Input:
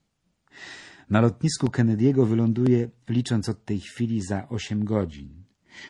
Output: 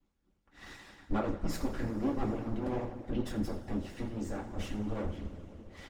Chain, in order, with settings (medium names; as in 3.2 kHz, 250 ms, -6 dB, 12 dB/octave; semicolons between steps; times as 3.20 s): comb filter that takes the minimum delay 3.6 ms; treble shelf 2.6 kHz -10 dB; in parallel at -2 dB: compression, threshold -36 dBFS, peak gain reduction 16 dB; on the sum: bass shelf 70 Hz +12 dB; on a send: delay 85 ms -12 dB; on the sum: two-slope reverb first 0.31 s, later 3.7 s, from -17 dB, DRR -3 dB; harmonic-percussive split harmonic -13 dB; trim -7 dB